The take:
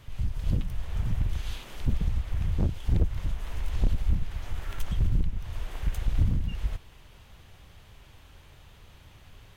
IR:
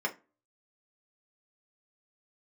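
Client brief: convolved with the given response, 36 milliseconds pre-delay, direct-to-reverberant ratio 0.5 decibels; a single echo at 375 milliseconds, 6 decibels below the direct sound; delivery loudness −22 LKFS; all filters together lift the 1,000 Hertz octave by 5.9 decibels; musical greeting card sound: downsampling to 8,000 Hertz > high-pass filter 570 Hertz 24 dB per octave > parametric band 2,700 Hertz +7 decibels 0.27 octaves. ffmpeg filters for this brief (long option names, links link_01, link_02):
-filter_complex "[0:a]equalizer=frequency=1000:width_type=o:gain=7.5,aecho=1:1:375:0.501,asplit=2[link_01][link_02];[1:a]atrim=start_sample=2205,adelay=36[link_03];[link_02][link_03]afir=irnorm=-1:irlink=0,volume=-7dB[link_04];[link_01][link_04]amix=inputs=2:normalize=0,aresample=8000,aresample=44100,highpass=frequency=570:width=0.5412,highpass=frequency=570:width=1.3066,equalizer=frequency=2700:width_type=o:width=0.27:gain=7,volume=20.5dB"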